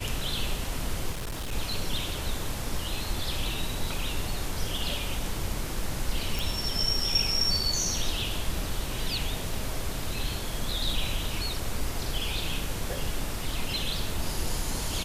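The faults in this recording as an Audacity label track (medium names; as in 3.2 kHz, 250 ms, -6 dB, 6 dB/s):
1.110000	1.530000	clipped -30 dBFS
6.390000	6.390000	pop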